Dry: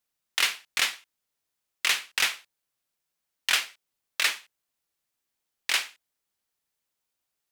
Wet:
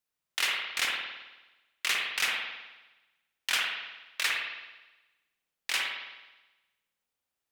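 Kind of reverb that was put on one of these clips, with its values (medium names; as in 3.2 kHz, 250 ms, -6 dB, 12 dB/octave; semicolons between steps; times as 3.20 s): spring tank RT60 1.1 s, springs 53 ms, chirp 80 ms, DRR -1.5 dB; trim -5.5 dB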